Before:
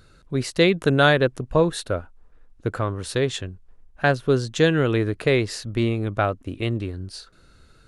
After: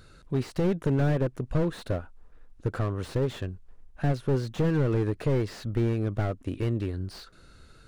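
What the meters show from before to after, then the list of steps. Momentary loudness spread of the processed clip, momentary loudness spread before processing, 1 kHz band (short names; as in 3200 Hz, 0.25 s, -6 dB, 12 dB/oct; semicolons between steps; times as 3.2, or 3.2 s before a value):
9 LU, 13 LU, -11.5 dB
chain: in parallel at +2.5 dB: compressor 6:1, threshold -27 dBFS, peak gain reduction 14.5 dB; on the sum: slew limiter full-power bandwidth 62 Hz; gain -7 dB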